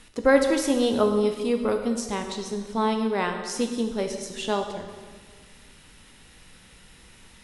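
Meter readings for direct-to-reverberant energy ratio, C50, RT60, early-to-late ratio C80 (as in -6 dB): 4.5 dB, 6.5 dB, 1.6 s, 8.0 dB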